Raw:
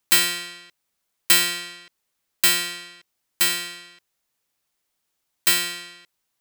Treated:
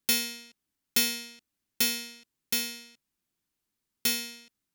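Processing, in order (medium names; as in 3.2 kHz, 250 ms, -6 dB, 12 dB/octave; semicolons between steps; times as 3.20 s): resonant low shelf 290 Hz +8.5 dB, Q 1.5; speed mistake 33 rpm record played at 45 rpm; trim -6.5 dB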